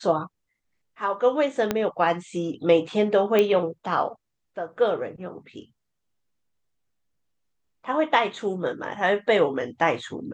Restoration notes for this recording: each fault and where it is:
1.71 pop -9 dBFS
3.39 pop -9 dBFS

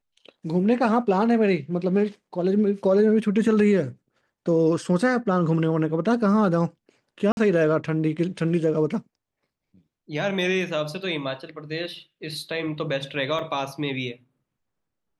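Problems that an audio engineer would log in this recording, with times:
7.32–7.37 gap 51 ms
13.39 gap 2.1 ms

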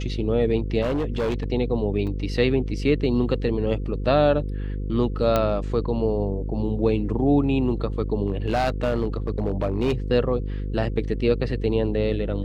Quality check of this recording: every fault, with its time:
buzz 50 Hz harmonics 10 -28 dBFS
0.81–1.44 clipped -20.5 dBFS
2.07 gap 4.4 ms
5.36 pop -8 dBFS
8.28–9.94 clipped -17 dBFS

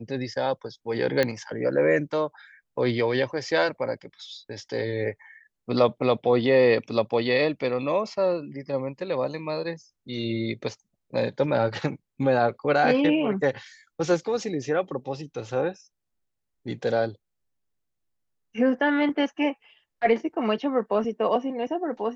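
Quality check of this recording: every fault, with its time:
1.23 pop -10 dBFS

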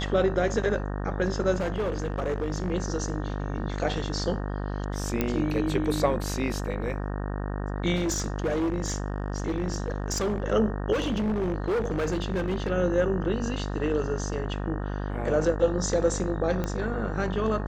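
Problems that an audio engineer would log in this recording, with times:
buzz 50 Hz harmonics 37 -31 dBFS
1.55–2.72 clipped -23.5 dBFS
5.21 pop -11 dBFS
7.95–10.42 clipped -23 dBFS
10.92–12.7 clipped -23 dBFS
16.64 pop -16 dBFS

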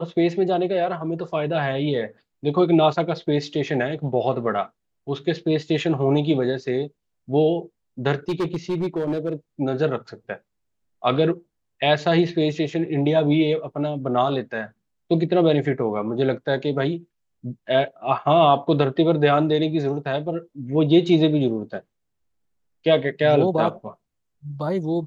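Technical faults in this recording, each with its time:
8.29–9.33 clipped -19.5 dBFS

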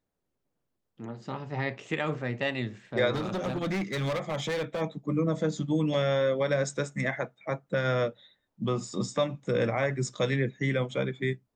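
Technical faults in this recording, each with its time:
3.14–4.82 clipped -27 dBFS

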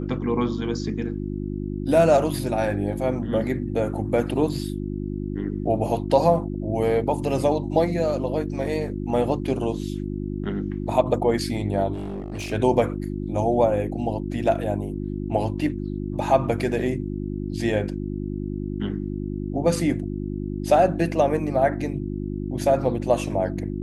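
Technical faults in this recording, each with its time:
hum 50 Hz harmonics 7 -29 dBFS
11.93–12.53 clipped -27 dBFS

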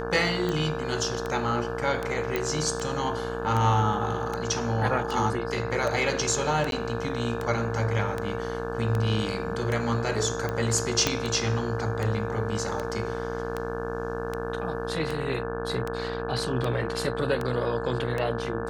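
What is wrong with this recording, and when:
buzz 60 Hz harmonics 29 -34 dBFS
tick 78 rpm -16 dBFS
tone 460 Hz -32 dBFS
2.36 pop -13 dBFS
6.71–6.72 gap
11.07 pop -7 dBFS

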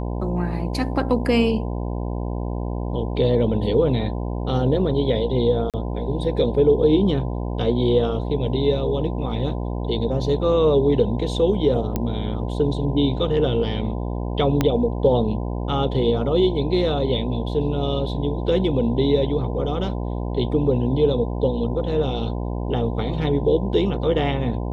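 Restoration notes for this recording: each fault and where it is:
buzz 60 Hz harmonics 17 -26 dBFS
5.7–5.74 gap 37 ms
11.96 pop -10 dBFS
14.61 pop -6 dBFS

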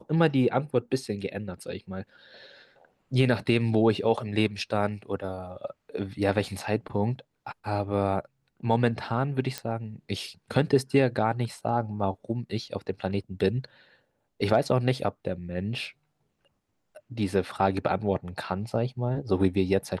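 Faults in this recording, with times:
9.58 pop -14 dBFS

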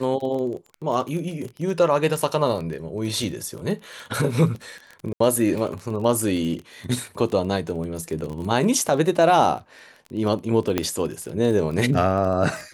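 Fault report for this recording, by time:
crackle 21/s -29 dBFS
5.13–5.2 gap 74 ms
10.78 pop -6 dBFS

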